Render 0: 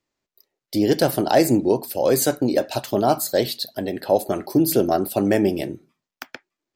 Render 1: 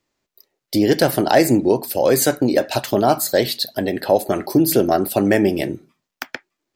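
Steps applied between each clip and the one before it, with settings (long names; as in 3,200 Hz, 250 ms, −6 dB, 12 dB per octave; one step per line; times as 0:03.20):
dynamic equaliser 1,900 Hz, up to +5 dB, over −41 dBFS, Q 1.8
in parallel at 0 dB: downward compressor, threshold −24 dBFS, peak gain reduction 13 dB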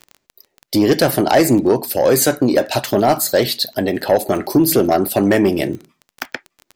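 surface crackle 16 per second −28 dBFS
soft clipping −8 dBFS, distortion −17 dB
level +3.5 dB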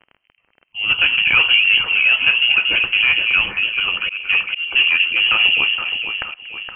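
delay that swaps between a low-pass and a high-pass 234 ms, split 1,000 Hz, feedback 71%, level −4 dB
voice inversion scrambler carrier 3,100 Hz
volume swells 217 ms
level −2 dB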